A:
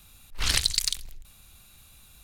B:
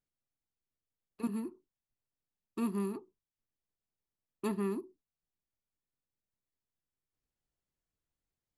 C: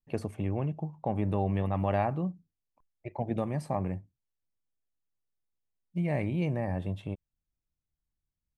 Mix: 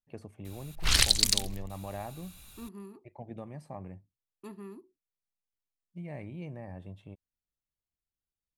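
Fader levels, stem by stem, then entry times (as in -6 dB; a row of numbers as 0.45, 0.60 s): +1.0, -11.0, -11.5 dB; 0.45, 0.00, 0.00 s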